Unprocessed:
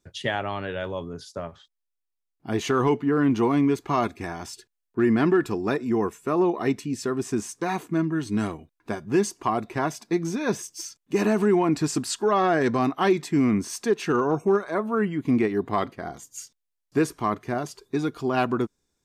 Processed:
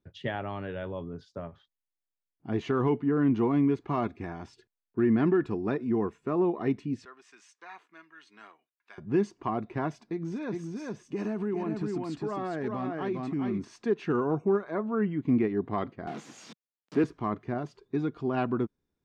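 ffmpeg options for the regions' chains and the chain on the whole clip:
ffmpeg -i in.wav -filter_complex "[0:a]asettb=1/sr,asplit=3[link_01][link_02][link_03];[link_01]atrim=end=7.054[link_04];[link_02]atrim=start=7.05:end=8.98,asetpts=PTS-STARTPTS,afade=type=in:duration=0.004:curve=qsin,afade=type=out:start_time=1.926:duration=0.004:curve=qsin,highpass=1500,acrossover=split=1500[link_05][link_06];[link_05]aeval=exprs='val(0)*(1-0.5/2+0.5/2*cos(2*PI*1.4*n/s))':channel_layout=same[link_07];[link_06]aeval=exprs='val(0)*(1-0.5/2-0.5/2*cos(2*PI*1.4*n/s))':channel_layout=same[link_08];[link_07][link_08]amix=inputs=2:normalize=0[link_09];[link_03]atrim=start=8.976[link_10];[link_04][link_09]acrossfade=duration=0.004:curve1=hsin:curve2=qsin[link_11];[link_11][link_10]acrossfade=duration=0.004:curve1=qsin:curve2=hsin,asettb=1/sr,asplit=3[link_12][link_13][link_14];[link_12]atrim=end=9.914[link_15];[link_13]atrim=start=9.91:end=13.65,asetpts=PTS-STARTPTS,afade=type=in:duration=0.004:curve=qsin,afade=type=out:start_time=3.736:duration=0.004:curve=qsin,highshelf=frequency=9000:gain=6.5,aecho=1:1:406:0.631,atrim=end_sample=164934,acompressor=threshold=-29dB:ratio=2:attack=3.2:release=140:knee=1:detection=peak[link_16];[link_14]atrim=start=13.646[link_17];[link_15][link_16]acrossfade=duration=0.004:curve1=hsin:curve2=qsin[link_18];[link_18][link_17]acrossfade=duration=0.004:curve1=qsin:curve2=hsin,asettb=1/sr,asplit=3[link_19][link_20][link_21];[link_19]atrim=end=16.074[link_22];[link_20]atrim=start=16.07:end=17.04,asetpts=PTS-STARTPTS,afade=type=in:duration=0.004:curve=qsin,afade=type=out:start_time=0.966:duration=0.004:curve=qsin,aeval=exprs='val(0)+0.5*0.0398*sgn(val(0))':channel_layout=same,highpass=frequency=170:width=0.5412,highpass=frequency=170:width=1.3066[link_23];[link_21]atrim=start=17.036[link_24];[link_22][link_23]acrossfade=duration=0.004:curve1=hsin:curve2=qsin[link_25];[link_25][link_24]acrossfade=duration=0.004:curve1=qsin:curve2=hsin,lowpass=3200,equalizer=frequency=150:width=0.35:gain=6.5,volume=-8.5dB" out.wav

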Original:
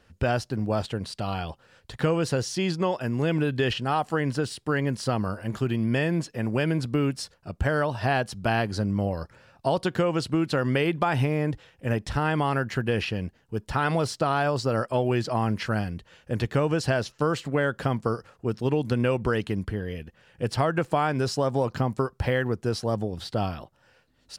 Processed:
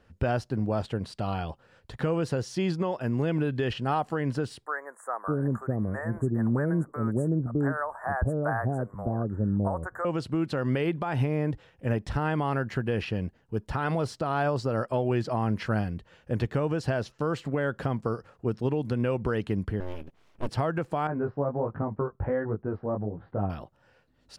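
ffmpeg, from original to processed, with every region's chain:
ffmpeg -i in.wav -filter_complex "[0:a]asettb=1/sr,asplit=3[link_01][link_02][link_03];[link_01]atrim=end=4.664[link_04];[link_02]atrim=start=4.66:end=10.05,asetpts=PTS-STARTPTS,afade=type=in:duration=0.004:curve=qsin,afade=type=out:start_time=5.386:duration=0.004:curve=qsin,asuperstop=centerf=3700:order=12:qfactor=0.67,equalizer=frequency=1200:width_type=o:width=0.23:gain=5,acrossover=split=600[link_05][link_06];[link_05]adelay=610[link_07];[link_07][link_06]amix=inputs=2:normalize=0,atrim=end_sample=237699[link_08];[link_03]atrim=start=10.046[link_09];[link_04][link_08]acrossfade=duration=0.004:curve1=hsin:curve2=qsin[link_10];[link_10][link_09]acrossfade=duration=0.004:curve1=qsin:curve2=hsin,asettb=1/sr,asplit=3[link_11][link_12][link_13];[link_11]atrim=end=19.804[link_14];[link_12]atrim=start=19.8:end=20.49,asetpts=PTS-STARTPTS,afade=type=in:duration=0.004:curve=qsin,afade=type=out:start_time=0.686:duration=0.004:curve=qsin,equalizer=frequency=1800:width_type=o:width=0.43:gain=-10,aeval=exprs='abs(val(0))':channel_layout=same[link_15];[link_13]atrim=start=20.486[link_16];[link_14][link_15]acrossfade=duration=0.004:curve1=hsin:curve2=qsin[link_17];[link_17][link_16]acrossfade=duration=0.004:curve1=qsin:curve2=hsin,asettb=1/sr,asplit=3[link_18][link_19][link_20];[link_18]atrim=end=21.074[link_21];[link_19]atrim=start=21.07:end=23.5,asetpts=PTS-STARTPTS,afade=type=in:duration=0.004:curve=qsin,afade=type=out:start_time=2.426:duration=0.004:curve=qsin,lowpass=frequency=1600:width=0.5412,lowpass=frequency=1600:width=1.3066,flanger=delay=18.5:depth=2.6:speed=1.4[link_22];[link_20]atrim=start=23.496[link_23];[link_21][link_22]acrossfade=duration=0.004:curve1=hsin:curve2=qsin[link_24];[link_24][link_23]acrossfade=duration=0.004:curve1=qsin:curve2=hsin,highshelf=frequency=2300:gain=-9,alimiter=limit=-17.5dB:level=0:latency=1:release=217" out.wav

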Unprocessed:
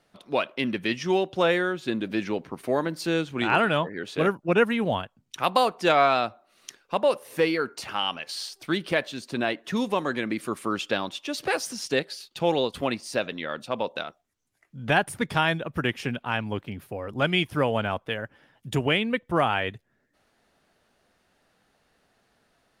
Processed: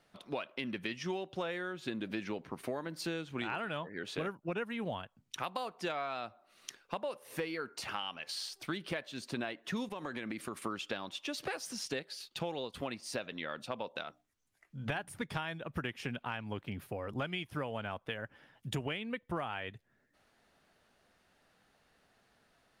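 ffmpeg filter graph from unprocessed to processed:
ffmpeg -i in.wav -filter_complex "[0:a]asettb=1/sr,asplit=3[link_01][link_02][link_03];[link_01]atrim=end=9.894[link_04];[link_02]atrim=start=9.89:end=10.62,asetpts=PTS-STARTPTS,afade=type=in:duration=0.004:curve=qsin,afade=type=out:start_time=0.726:duration=0.004:curve=qsin,agate=range=-33dB:threshold=-40dB:ratio=3:release=100:detection=peak,acompressor=threshold=-31dB:ratio=6:attack=3.2:release=140:knee=1:detection=peak[link_05];[link_03]atrim=start=10.616[link_06];[link_04][link_05]acrossfade=duration=0.004:curve1=hsin:curve2=qsin[link_07];[link_07][link_06]acrossfade=duration=0.004:curve1=qsin:curve2=hsin,asettb=1/sr,asplit=3[link_08][link_09][link_10];[link_08]atrim=end=14.054[link_11];[link_09]atrim=start=14.05:end=15.2,asetpts=PTS-STARTPTS,afade=type=in:duration=0.004:curve=qsin,afade=type=out:start_time=1.146:duration=0.004:curve=qsin,asubboost=boost=2.5:cutoff=120,bandreject=frequency=60:width_type=h:width=6,bandreject=frequency=120:width_type=h:width=6,bandreject=frequency=180:width_type=h:width=6,bandreject=frequency=240:width_type=h:width=6,bandreject=frequency=300:width_type=h:width=6[link_12];[link_10]atrim=start=15.196[link_13];[link_11][link_12]acrossfade=duration=0.004:curve1=hsin:curve2=qsin[link_14];[link_14][link_13]acrossfade=duration=0.004:curve1=qsin:curve2=hsin,lowshelf=frequency=460:gain=-5.5,acompressor=threshold=-34dB:ratio=6,bass=frequency=250:gain=4,treble=frequency=4000:gain=-2,volume=-1.5dB" out.wav

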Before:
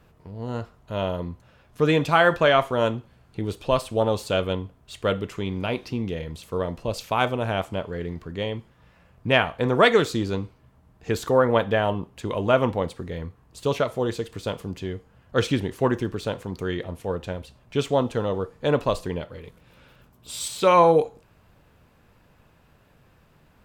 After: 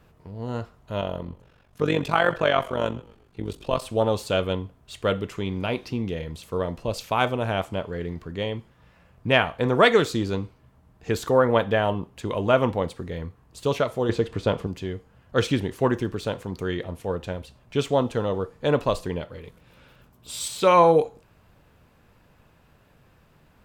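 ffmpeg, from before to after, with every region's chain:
ffmpeg -i in.wav -filter_complex "[0:a]asettb=1/sr,asplit=3[link_01][link_02][link_03];[link_01]atrim=end=1.014[link_04];[link_02]atrim=start=1.01:end=3.82,asetpts=PTS-STARTPTS,afade=type=in:duration=0.004:curve=qsin,afade=type=out:start_time=2.806:duration=0.004:curve=qsin,tremolo=f=47:d=0.788,asplit=4[link_05][link_06][link_07][link_08];[link_06]adelay=129,afreqshift=-51,volume=-21dB[link_09];[link_07]adelay=258,afreqshift=-102,volume=-28.7dB[link_10];[link_08]adelay=387,afreqshift=-153,volume=-36.5dB[link_11];[link_05][link_09][link_10][link_11]amix=inputs=4:normalize=0,atrim=end_sample=123921[link_12];[link_03]atrim=start=3.816[link_13];[link_04][link_12]acrossfade=duration=0.004:curve1=hsin:curve2=qsin[link_14];[link_14][link_13]acrossfade=duration=0.004:curve1=qsin:curve2=hsin,asettb=1/sr,asplit=3[link_15][link_16][link_17];[link_15]atrim=end=14.094[link_18];[link_16]atrim=start=14.09:end=14.67,asetpts=PTS-STARTPTS,afade=type=in:duration=0.004:curve=qsin,afade=type=out:start_time=0.576:duration=0.004:curve=qsin,aemphasis=mode=reproduction:type=75kf,acontrast=64[link_19];[link_17]atrim=start=14.666[link_20];[link_18][link_19]acrossfade=duration=0.004:curve1=hsin:curve2=qsin[link_21];[link_21][link_20]acrossfade=duration=0.004:curve1=qsin:curve2=hsin" out.wav

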